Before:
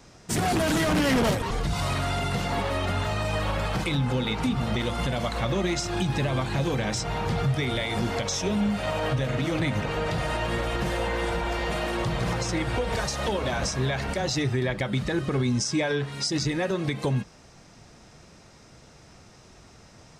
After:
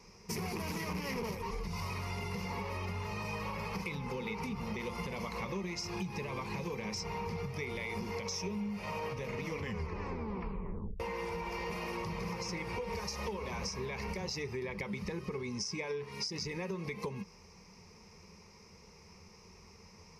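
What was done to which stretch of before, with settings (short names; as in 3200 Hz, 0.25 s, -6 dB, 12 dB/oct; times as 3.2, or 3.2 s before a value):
9.44 tape stop 1.56 s
whole clip: ripple EQ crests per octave 0.83, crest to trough 14 dB; compressor, threshold -27 dBFS; gain -8 dB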